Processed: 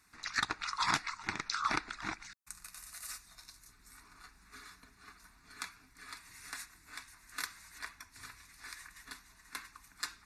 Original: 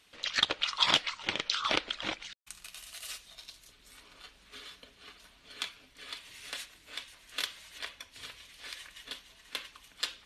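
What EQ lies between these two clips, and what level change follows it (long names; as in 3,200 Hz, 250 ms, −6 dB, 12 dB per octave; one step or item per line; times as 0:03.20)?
phaser with its sweep stopped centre 1,300 Hz, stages 4
+1.5 dB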